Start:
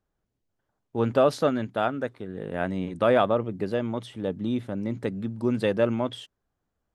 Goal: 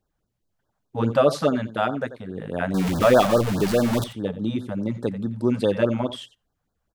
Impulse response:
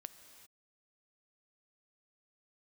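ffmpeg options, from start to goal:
-filter_complex "[0:a]asettb=1/sr,asplit=3[a][b][c];[a]atrim=end=2.744[d];[b]atrim=start=2.74:end=4.04,asetpts=PTS-STARTPTS,afade=t=in:d=0.004:c=qsin,afade=t=out:st=1.296:d=0.004:c=qsin,aeval=exprs='val(0)+0.5*0.0631*sgn(val(0))':c=same[e];[c]atrim=start=4.036[f];[d][e]acrossfade=d=0.004:c1=hsin:c2=qsin[g];[g][f]acrossfade=d=0.004:c1=qsin:c2=hsin,asplit=2[h][i];[i]adelay=87.46,volume=-15dB,highshelf=f=4k:g=-1.97[j];[h][j]amix=inputs=2:normalize=0,asplit=2[k][l];[1:a]atrim=start_sample=2205,atrim=end_sample=4410[m];[l][m]afir=irnorm=-1:irlink=0,volume=0dB[n];[k][n]amix=inputs=2:normalize=0,afftfilt=real='re*(1-between(b*sr/1024,290*pow(2600/290,0.5+0.5*sin(2*PI*4.8*pts/sr))/1.41,290*pow(2600/290,0.5+0.5*sin(2*PI*4.8*pts/sr))*1.41))':imag='im*(1-between(b*sr/1024,290*pow(2600/290,0.5+0.5*sin(2*PI*4.8*pts/sr))/1.41,290*pow(2600/290,0.5+0.5*sin(2*PI*4.8*pts/sr))*1.41))':win_size=1024:overlap=0.75"

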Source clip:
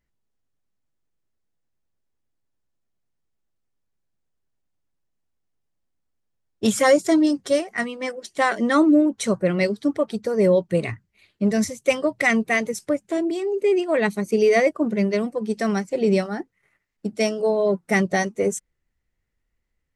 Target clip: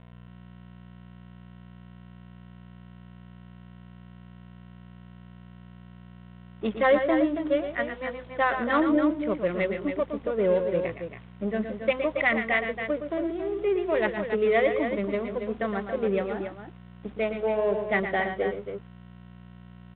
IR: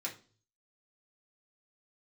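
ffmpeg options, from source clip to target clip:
-filter_complex "[0:a]highpass=f=510:p=1,aemphasis=mode=reproduction:type=50kf,aeval=exprs='val(0)+0.00447*(sin(2*PI*60*n/s)+sin(2*PI*2*60*n/s)/2+sin(2*PI*3*60*n/s)/3+sin(2*PI*4*60*n/s)/4+sin(2*PI*5*60*n/s)/5)':c=same,adynamicsmooth=sensitivity=2.5:basefreq=820,acrusher=bits=7:mix=0:aa=0.000001,asplit=2[a][b];[b]aecho=0:1:116|140|278:0.376|0.112|0.398[c];[a][c]amix=inputs=2:normalize=0,aresample=8000,aresample=44100,volume=-2dB"

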